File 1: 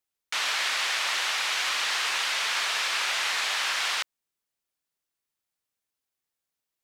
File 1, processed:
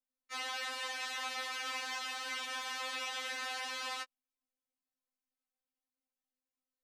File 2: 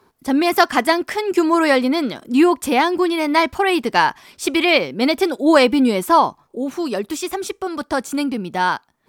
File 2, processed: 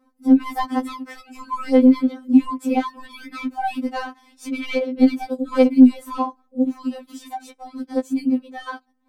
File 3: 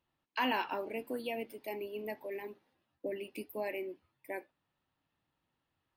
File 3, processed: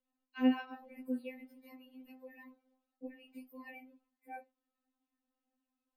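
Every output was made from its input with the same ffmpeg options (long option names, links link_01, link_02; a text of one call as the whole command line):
ffmpeg -i in.wav -af "acontrast=64,tiltshelf=frequency=790:gain=7.5,afftfilt=real='re*3.46*eq(mod(b,12),0)':imag='im*3.46*eq(mod(b,12),0)':win_size=2048:overlap=0.75,volume=-11dB" out.wav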